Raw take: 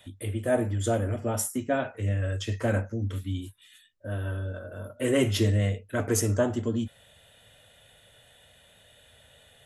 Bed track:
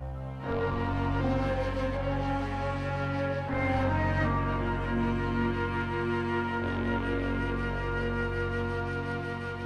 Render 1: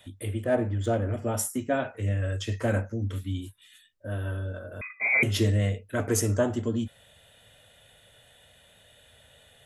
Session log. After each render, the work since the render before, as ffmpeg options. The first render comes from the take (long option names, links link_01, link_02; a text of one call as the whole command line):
ffmpeg -i in.wav -filter_complex "[0:a]asettb=1/sr,asplit=3[link_01][link_02][link_03];[link_01]atrim=end=0.444[link_04];[link_02]atrim=start=0.44:end=1.14,asetpts=PTS-STARTPTS,afade=type=in:duration=0.004:curve=qsin,afade=type=out:start_time=0.696:duration=0.004:curve=qsin,adynamicsmooth=sensitivity=2.5:basefreq=3500[link_05];[link_03]atrim=start=1.136[link_06];[link_04][link_05]acrossfade=duration=0.004:curve1=hsin:curve2=qsin[link_07];[link_07][link_06]acrossfade=duration=0.004:curve1=qsin:curve2=hsin,asettb=1/sr,asplit=3[link_08][link_09][link_10];[link_08]atrim=end=4.814[link_11];[link_09]atrim=start=4.81:end=5.23,asetpts=PTS-STARTPTS,afade=type=in:duration=0.004:curve=qsin,afade=type=out:start_time=0.416:duration=0.004:curve=qsin,lowpass=frequency=2200:width_type=q:width=0.5098,lowpass=frequency=2200:width_type=q:width=0.6013,lowpass=frequency=2200:width_type=q:width=0.9,lowpass=frequency=2200:width_type=q:width=2.563,afreqshift=-2600[link_12];[link_10]atrim=start=5.226[link_13];[link_11][link_12]acrossfade=duration=0.004:curve1=hsin:curve2=qsin[link_14];[link_14][link_13]acrossfade=duration=0.004:curve1=qsin:curve2=hsin" out.wav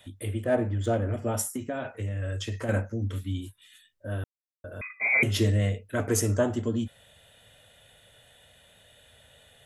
ffmpeg -i in.wav -filter_complex "[0:a]asettb=1/sr,asplit=3[link_01][link_02][link_03];[link_01]atrim=end=1.414[link_04];[link_02]atrim=start=1.41:end=2.69,asetpts=PTS-STARTPTS,afade=type=in:duration=0.004:curve=qsin,afade=type=out:start_time=1.276:duration=0.004:curve=qsin,acompressor=threshold=-27dB:ratio=10:attack=3.2:release=140:knee=1:detection=peak[link_05];[link_03]atrim=start=2.686[link_06];[link_04][link_05]acrossfade=duration=0.004:curve1=hsin:curve2=qsin[link_07];[link_07][link_06]acrossfade=duration=0.004:curve1=qsin:curve2=hsin,asplit=3[link_08][link_09][link_10];[link_08]atrim=end=4.24,asetpts=PTS-STARTPTS,afade=type=out:start_time=4.236:duration=0.004:curve=hsin[link_11];[link_09]atrim=start=4.24:end=4.64,asetpts=PTS-STARTPTS,volume=0[link_12];[link_10]atrim=start=4.64,asetpts=PTS-STARTPTS,afade=type=in:duration=0.004:curve=hsin[link_13];[link_11][link_12][link_13]concat=n=3:v=0:a=1" out.wav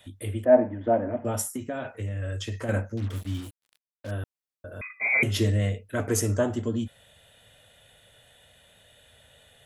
ffmpeg -i in.wav -filter_complex "[0:a]asettb=1/sr,asplit=3[link_01][link_02][link_03];[link_01]atrim=end=0.454[link_04];[link_02]atrim=start=0.45:end=1.25,asetpts=PTS-STARTPTS,afade=type=in:duration=0.004:curve=qsin,afade=type=out:start_time=0.796:duration=0.004:curve=qsin,highpass=180,equalizer=frequency=260:width_type=q:width=4:gain=7,equalizer=frequency=420:width_type=q:width=4:gain=-4,equalizer=frequency=640:width_type=q:width=4:gain=9,equalizer=frequency=930:width_type=q:width=4:gain=7,equalizer=frequency=1300:width_type=q:width=4:gain=-5,lowpass=frequency=2200:width=0.5412,lowpass=frequency=2200:width=1.3066[link_05];[link_03]atrim=start=1.246[link_06];[link_04][link_05]acrossfade=duration=0.004:curve1=hsin:curve2=qsin[link_07];[link_07][link_06]acrossfade=duration=0.004:curve1=qsin:curve2=hsin,asettb=1/sr,asplit=3[link_08][link_09][link_10];[link_08]atrim=end=2.974[link_11];[link_09]atrim=start=2.97:end=4.11,asetpts=PTS-STARTPTS,afade=type=in:duration=0.004:curve=qsin,afade=type=out:start_time=1.136:duration=0.004:curve=qsin,acrusher=bits=6:mix=0:aa=0.5[link_12];[link_10]atrim=start=4.106[link_13];[link_11][link_12]acrossfade=duration=0.004:curve1=hsin:curve2=qsin[link_14];[link_14][link_13]acrossfade=duration=0.004:curve1=qsin:curve2=hsin" out.wav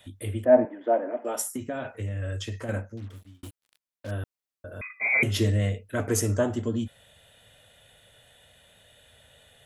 ffmpeg -i in.wav -filter_complex "[0:a]asettb=1/sr,asplit=3[link_01][link_02][link_03];[link_01]atrim=end=0.654[link_04];[link_02]atrim=start=0.65:end=1.47,asetpts=PTS-STARTPTS,afade=type=in:duration=0.004:curve=qsin,afade=type=out:start_time=0.816:duration=0.004:curve=qsin,highpass=frequency=310:width=0.5412,highpass=frequency=310:width=1.3066[link_05];[link_03]atrim=start=1.466[link_06];[link_04][link_05]acrossfade=duration=0.004:curve1=hsin:curve2=qsin[link_07];[link_07][link_06]acrossfade=duration=0.004:curve1=qsin:curve2=hsin,asplit=2[link_08][link_09];[link_08]atrim=end=3.43,asetpts=PTS-STARTPTS,afade=type=out:start_time=2.36:duration=1.07[link_10];[link_09]atrim=start=3.43,asetpts=PTS-STARTPTS,afade=type=in:duration=0.004:curve=hsin[link_11];[link_10][link_11]concat=n=2:v=0:a=1" out.wav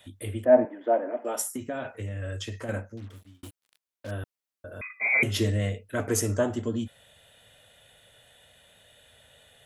ffmpeg -i in.wav -af "lowshelf=frequency=170:gain=-4" out.wav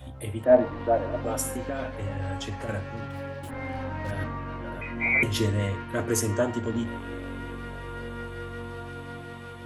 ffmpeg -i in.wav -i bed.wav -filter_complex "[1:a]volume=-6dB[link_01];[0:a][link_01]amix=inputs=2:normalize=0" out.wav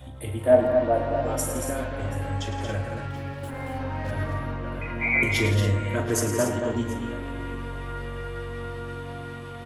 ffmpeg -i in.wav -filter_complex "[0:a]asplit=2[link_01][link_02];[link_02]adelay=41,volume=-11dB[link_03];[link_01][link_03]amix=inputs=2:normalize=0,aecho=1:1:108|168|229|280|731:0.299|0.237|0.473|0.266|0.1" out.wav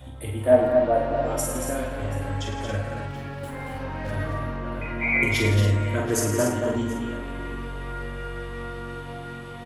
ffmpeg -i in.wav -filter_complex "[0:a]asplit=2[link_01][link_02];[link_02]adelay=48,volume=-6dB[link_03];[link_01][link_03]amix=inputs=2:normalize=0,aecho=1:1:237:0.0841" out.wav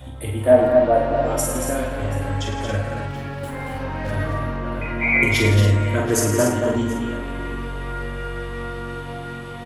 ffmpeg -i in.wav -af "volume=4.5dB,alimiter=limit=-3dB:level=0:latency=1" out.wav